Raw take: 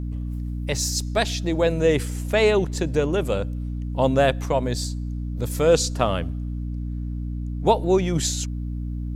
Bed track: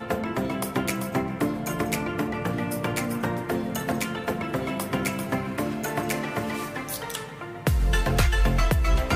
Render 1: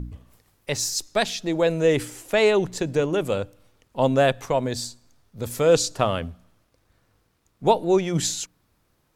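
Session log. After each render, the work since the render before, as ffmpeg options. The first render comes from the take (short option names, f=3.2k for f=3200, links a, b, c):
-af "bandreject=f=60:t=h:w=4,bandreject=f=120:t=h:w=4,bandreject=f=180:t=h:w=4,bandreject=f=240:t=h:w=4,bandreject=f=300:t=h:w=4"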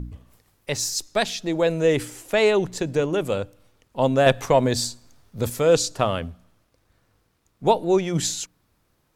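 -filter_complex "[0:a]asettb=1/sr,asplit=3[a][b][c];[a]atrim=end=4.264[d];[b]atrim=start=4.26:end=5.5,asetpts=PTS-STARTPTS,afade=t=in:d=0.004:c=qsin,afade=t=out:st=1.236:d=0.004:c=qsin,acontrast=39[e];[c]atrim=start=5.496[f];[d][e]acrossfade=d=0.004:c1=hsin:c2=qsin[g];[g][f]acrossfade=d=0.004:c1=qsin:c2=hsin"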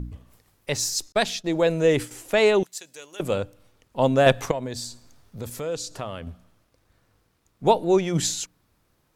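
-filter_complex "[0:a]asettb=1/sr,asplit=3[a][b][c];[a]atrim=end=1.124[d];[b]atrim=start=1.12:end=2.11,asetpts=PTS-STARTPTS,afade=t=in:d=0.004:c=qsin,afade=t=out:st=0.986:d=0.004:c=qsin,agate=range=-33dB:threshold=-32dB:ratio=3:release=100:detection=peak[e];[c]atrim=start=2.106[f];[d][e]acrossfade=d=0.004:c1=hsin:c2=qsin[g];[g][f]acrossfade=d=0.004:c1=qsin:c2=hsin,asettb=1/sr,asplit=3[h][i][j];[h]atrim=end=2.634[k];[i]atrim=start=2.63:end=3.2,asetpts=PTS-STARTPTS,afade=t=in:d=0.004:c=qsin,afade=t=out:st=0.566:d=0.004:c=qsin,aderivative[l];[j]atrim=start=3.196[m];[k][l]acrossfade=d=0.004:c1=hsin:c2=qsin[n];[n][m]acrossfade=d=0.004:c1=qsin:c2=hsin,asettb=1/sr,asplit=3[o][p][q];[o]atrim=end=4.514[r];[p]atrim=start=4.51:end=6.27,asetpts=PTS-STARTPTS,afade=t=in:d=0.004:c=qsin,afade=t=out:st=1.756:d=0.004:c=qsin,acompressor=threshold=-36dB:ratio=2:attack=3.2:release=140:knee=1:detection=peak[s];[q]atrim=start=6.266[t];[r][s]acrossfade=d=0.004:c1=hsin:c2=qsin[u];[u][t]acrossfade=d=0.004:c1=qsin:c2=hsin"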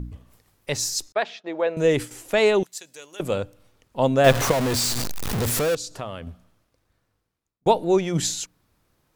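-filter_complex "[0:a]asettb=1/sr,asplit=3[a][b][c];[a]atrim=end=1.134[d];[b]atrim=start=1.13:end=1.77,asetpts=PTS-STARTPTS,afade=t=in:d=0.004:c=qsin,afade=t=out:st=0.636:d=0.004:c=qsin,highpass=470,lowpass=2.2k[e];[c]atrim=start=1.766[f];[d][e]acrossfade=d=0.004:c1=hsin:c2=qsin[g];[g][f]acrossfade=d=0.004:c1=qsin:c2=hsin,asettb=1/sr,asplit=3[h][i][j];[h]atrim=end=4.244[k];[i]atrim=start=4.24:end=5.75,asetpts=PTS-STARTPTS,afade=t=in:d=0.004:c=qsin,afade=t=out:st=1.506:d=0.004:c=qsin,aeval=exprs='val(0)+0.5*0.106*sgn(val(0))':c=same[l];[j]atrim=start=5.746[m];[k][l]acrossfade=d=0.004:c1=hsin:c2=qsin[n];[n][m]acrossfade=d=0.004:c1=qsin:c2=hsin,asplit=2[o][p];[o]atrim=end=7.66,asetpts=PTS-STARTPTS,afade=t=out:st=6.25:d=1.41[q];[p]atrim=start=7.66,asetpts=PTS-STARTPTS,afade=t=in:d=0.004:c=hsin[r];[q][r]concat=n=2:v=0:a=1"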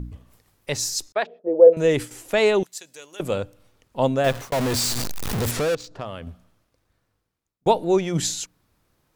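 -filter_complex "[0:a]asplit=3[a][b][c];[a]afade=t=out:st=1.25:d=0.02[d];[b]lowpass=f=490:t=q:w=5.3,afade=t=in:st=1.25:d=0.02,afade=t=out:st=1.72:d=0.02[e];[c]afade=t=in:st=1.72:d=0.02[f];[d][e][f]amix=inputs=3:normalize=0,asettb=1/sr,asplit=3[g][h][i];[g]atrim=end=5.514[j];[h]atrim=start=5.51:end=6.05,asetpts=PTS-STARTPTS,afade=t=in:d=0.004:c=qsin,afade=t=out:st=0.536:d=0.004:c=qsin,adynamicsmooth=sensitivity=5:basefreq=2.1k[k];[i]atrim=start=6.046[l];[j][k]acrossfade=d=0.004:c1=hsin:c2=qsin[m];[m][l]acrossfade=d=0.004:c1=qsin:c2=hsin,asplit=2[n][o];[n]atrim=end=4.52,asetpts=PTS-STARTPTS,afade=t=out:st=4.05:d=0.47[p];[o]atrim=start=4.52,asetpts=PTS-STARTPTS,afade=t=in:d=0.004:c=hsin[q];[p][q]concat=n=2:v=0:a=1"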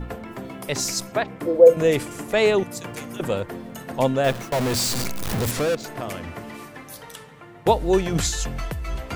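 -filter_complex "[1:a]volume=-7.5dB[a];[0:a][a]amix=inputs=2:normalize=0"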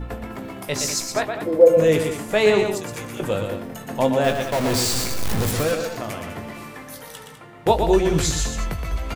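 -filter_complex "[0:a]asplit=2[a][b];[b]adelay=19,volume=-8.5dB[c];[a][c]amix=inputs=2:normalize=0,aecho=1:1:119.5|201.2:0.501|0.282"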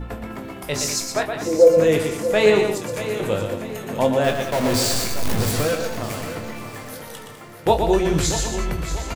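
-filter_complex "[0:a]asplit=2[a][b];[b]adelay=28,volume=-11dB[c];[a][c]amix=inputs=2:normalize=0,aecho=1:1:635|1270|1905|2540:0.251|0.098|0.0382|0.0149"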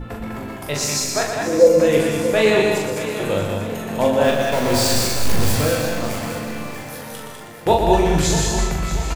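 -filter_complex "[0:a]asplit=2[a][b];[b]adelay=41,volume=-4dB[c];[a][c]amix=inputs=2:normalize=0,aecho=1:1:200:0.562"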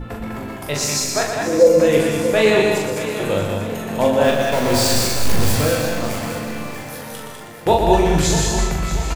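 -af "volume=1dB,alimiter=limit=-2dB:level=0:latency=1"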